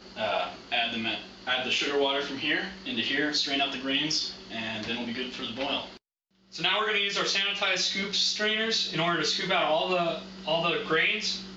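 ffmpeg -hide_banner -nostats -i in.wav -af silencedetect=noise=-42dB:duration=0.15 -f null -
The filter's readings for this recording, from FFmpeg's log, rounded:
silence_start: 5.97
silence_end: 6.53 | silence_duration: 0.56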